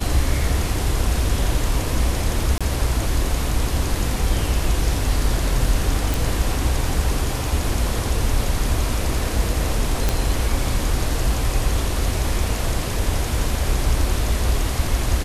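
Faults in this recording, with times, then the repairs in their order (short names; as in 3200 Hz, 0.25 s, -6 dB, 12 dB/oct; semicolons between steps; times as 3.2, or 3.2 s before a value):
2.58–2.61 gap 26 ms
6.14 pop
10.09 pop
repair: de-click; interpolate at 2.58, 26 ms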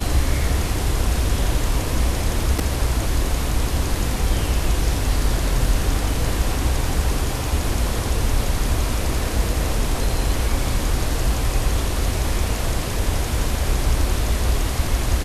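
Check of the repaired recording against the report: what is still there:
none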